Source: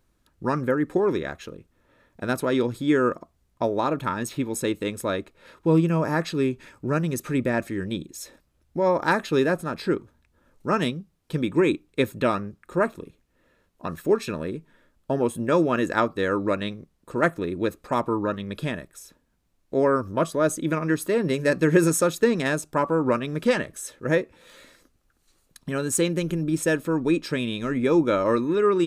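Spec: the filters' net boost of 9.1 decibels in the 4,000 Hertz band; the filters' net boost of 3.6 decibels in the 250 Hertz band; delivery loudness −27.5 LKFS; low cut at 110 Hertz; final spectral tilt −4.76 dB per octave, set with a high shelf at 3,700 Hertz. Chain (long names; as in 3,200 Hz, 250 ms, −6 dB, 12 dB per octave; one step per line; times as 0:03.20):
high-pass filter 110 Hz
parametric band 250 Hz +5 dB
high-shelf EQ 3,700 Hz +3.5 dB
parametric band 4,000 Hz +8.5 dB
level −5.5 dB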